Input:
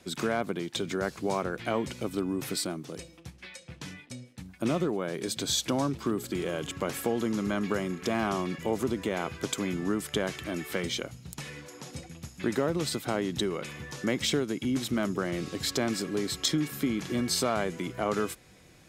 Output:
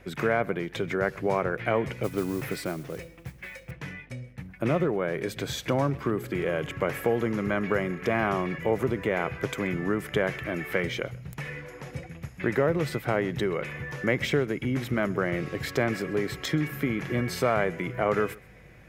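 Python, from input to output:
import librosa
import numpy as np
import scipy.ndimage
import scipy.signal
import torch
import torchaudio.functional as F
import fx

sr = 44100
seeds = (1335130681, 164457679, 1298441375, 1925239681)

y = fx.graphic_eq(x, sr, hz=(125, 250, 500, 2000, 4000, 8000), db=(8, -4, 6, 10, -8, -10))
y = fx.mod_noise(y, sr, seeds[0], snr_db=19, at=(2.03, 3.71))
y = y + 10.0 ** (-23.0 / 20.0) * np.pad(y, (int(130 * sr / 1000.0), 0))[:len(y)]
y = fx.add_hum(y, sr, base_hz=50, snr_db=29)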